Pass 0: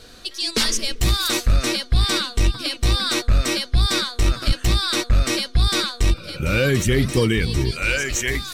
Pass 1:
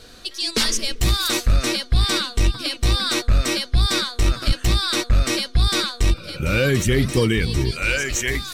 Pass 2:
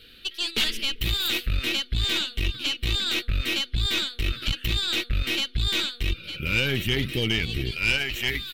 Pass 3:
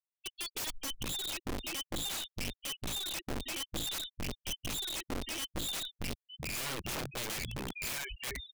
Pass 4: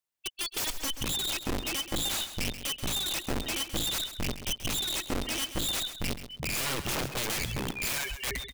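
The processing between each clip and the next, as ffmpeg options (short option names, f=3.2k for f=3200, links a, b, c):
-af anull
-af "firequalizer=gain_entry='entry(410,0);entry(910,-22);entry(1300,-1);entry(2900,14);entry(6200,-14);entry(14000,9)':delay=0.05:min_phase=1,aeval=exprs='(tanh(2.51*val(0)+0.6)-tanh(0.6))/2.51':c=same,volume=-6dB"
-af "afftfilt=real='re*gte(hypot(re,im),0.126)':imag='im*gte(hypot(re,im),0.126)':win_size=1024:overlap=0.75,lowpass=5.7k,aeval=exprs='(mod(15*val(0)+1,2)-1)/15':c=same,volume=-8.5dB"
-af "aecho=1:1:132|264|396:0.266|0.0559|0.0117,volume=6dB"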